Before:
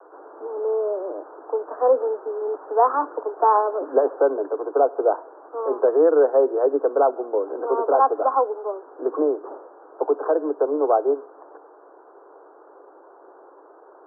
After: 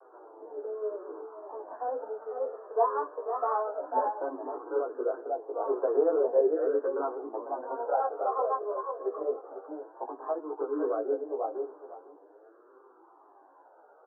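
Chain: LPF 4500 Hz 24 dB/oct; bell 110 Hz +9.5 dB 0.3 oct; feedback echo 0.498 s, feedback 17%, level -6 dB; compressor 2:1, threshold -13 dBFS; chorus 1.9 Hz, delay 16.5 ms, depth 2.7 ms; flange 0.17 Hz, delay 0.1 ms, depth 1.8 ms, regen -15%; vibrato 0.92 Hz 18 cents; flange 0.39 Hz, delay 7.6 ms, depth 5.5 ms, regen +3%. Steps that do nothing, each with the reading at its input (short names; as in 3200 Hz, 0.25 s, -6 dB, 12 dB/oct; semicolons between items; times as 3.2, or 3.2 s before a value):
LPF 4500 Hz: input band ends at 1500 Hz; bell 110 Hz: input band starts at 240 Hz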